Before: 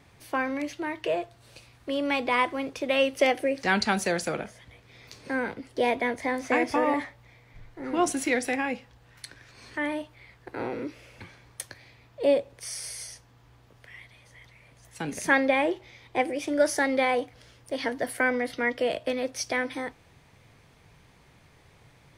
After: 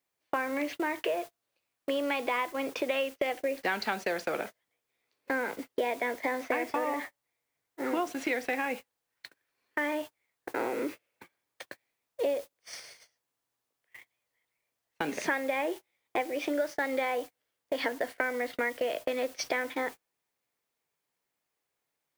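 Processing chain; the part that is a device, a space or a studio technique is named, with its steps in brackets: baby monitor (band-pass 330–3700 Hz; compression 8:1, threshold -34 dBFS, peak gain reduction 16.5 dB; white noise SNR 18 dB; gate -44 dBFS, range -34 dB); trim +6.5 dB

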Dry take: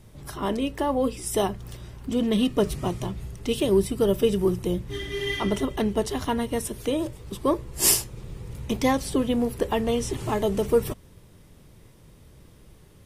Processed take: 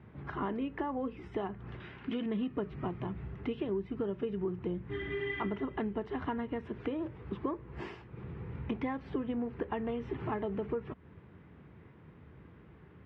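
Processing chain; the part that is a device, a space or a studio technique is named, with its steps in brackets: bass amplifier (compression 6:1, threshold -31 dBFS, peak gain reduction 15 dB; cabinet simulation 71–2300 Hz, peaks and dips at 110 Hz -6 dB, 570 Hz -7 dB, 1.5 kHz +3 dB); 1.80–2.26 s: frequency weighting D

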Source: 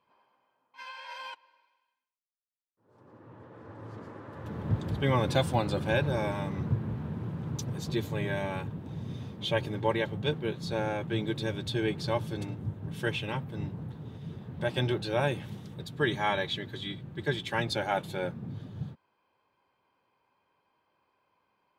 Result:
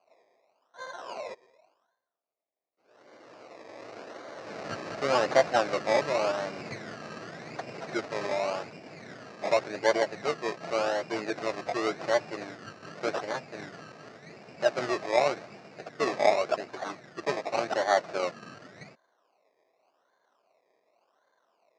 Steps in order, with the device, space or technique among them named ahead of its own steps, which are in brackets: circuit-bent sampling toy (decimation with a swept rate 24×, swing 60% 0.88 Hz; cabinet simulation 450–5600 Hz, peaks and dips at 660 Hz +8 dB, 930 Hz -5 dB, 3.3 kHz -10 dB); trim +4.5 dB

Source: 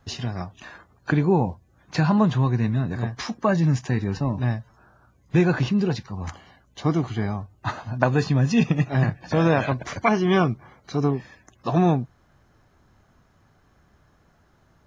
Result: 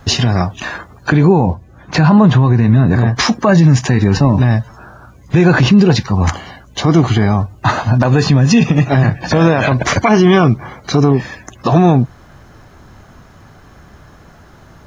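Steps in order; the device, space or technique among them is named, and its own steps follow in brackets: loud club master (compression 2.5:1, threshold -21 dBFS, peak gain reduction 5.5 dB; hard clipper -7.5 dBFS, distortion -41 dB; loudness maximiser +19.5 dB); 1.46–3.16 s: treble shelf 3.6 kHz -8.5 dB; trim -1 dB

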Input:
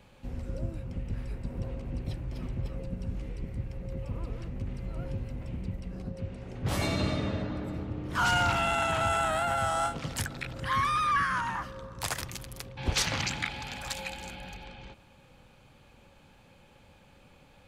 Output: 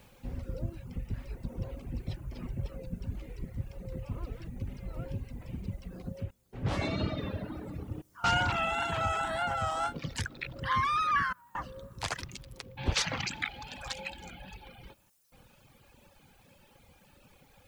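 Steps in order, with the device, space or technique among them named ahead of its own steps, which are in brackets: worn cassette (low-pass 6.2 kHz 12 dB/octave; wow and flutter; level dips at 6.31/8.02/11.33/15.10 s, 217 ms -20 dB; white noise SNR 33 dB); reverb removal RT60 1.5 s; 6.23–7.18 s: treble shelf 4 kHz -7 dB

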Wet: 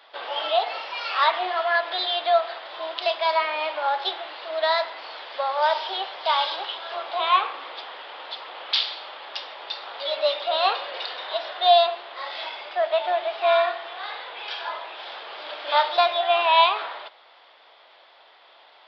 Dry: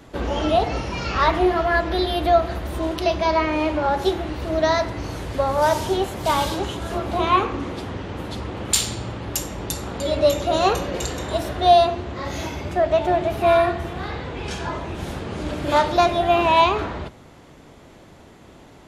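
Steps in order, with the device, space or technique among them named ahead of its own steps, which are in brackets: musical greeting card (resampled via 11.025 kHz; high-pass 650 Hz 24 dB/octave; peaking EQ 3.4 kHz +7 dB 0.41 oct); trim -1 dB

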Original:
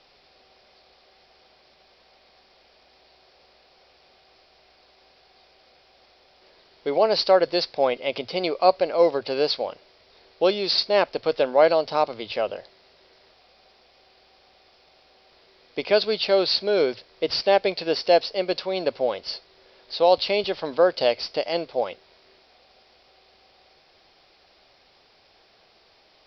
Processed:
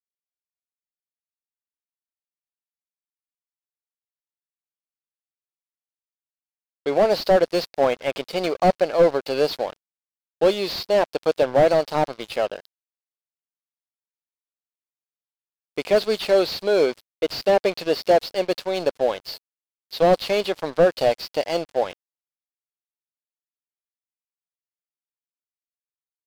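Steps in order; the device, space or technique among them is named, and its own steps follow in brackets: early transistor amplifier (crossover distortion -38.5 dBFS; slew-rate limiter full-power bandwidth 110 Hz); trim +3.5 dB

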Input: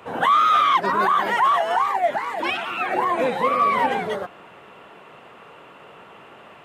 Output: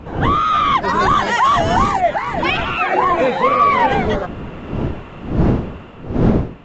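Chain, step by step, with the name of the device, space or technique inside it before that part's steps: 0.88–2.01 s: tone controls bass +5 dB, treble +12 dB; smartphone video outdoors (wind noise 270 Hz -24 dBFS; level rider gain up to 10 dB; trim -1 dB; AAC 64 kbps 16 kHz)

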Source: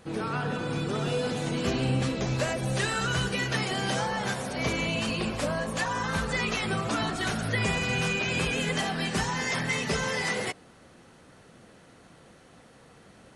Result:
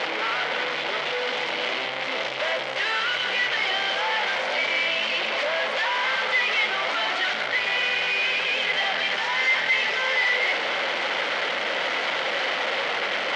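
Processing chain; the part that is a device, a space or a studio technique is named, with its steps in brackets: 5.14–7.21 s: high-pass 140 Hz 6 dB/octave; home computer beeper (one-bit comparator; cabinet simulation 550–4600 Hz, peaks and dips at 570 Hz +7 dB, 870 Hz +3 dB, 1.5 kHz +3 dB, 2.1 kHz +10 dB, 3.1 kHz +7 dB); trim +3 dB

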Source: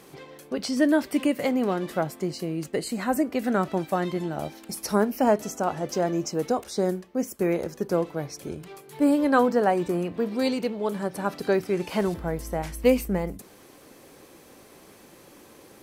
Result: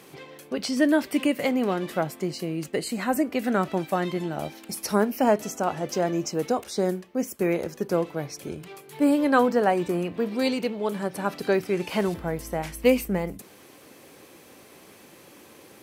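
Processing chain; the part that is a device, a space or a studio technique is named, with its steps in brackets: high-pass 69 Hz; presence and air boost (peaking EQ 2.6 kHz +4 dB 1 oct; treble shelf 12 kHz +3 dB)

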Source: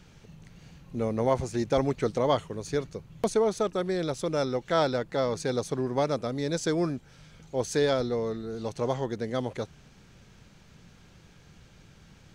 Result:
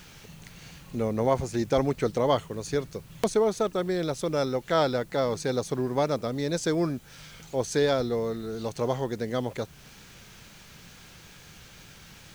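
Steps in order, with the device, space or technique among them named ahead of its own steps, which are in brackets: noise-reduction cassette on a plain deck (tape noise reduction on one side only encoder only; wow and flutter 29 cents; white noise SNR 31 dB); trim +1 dB

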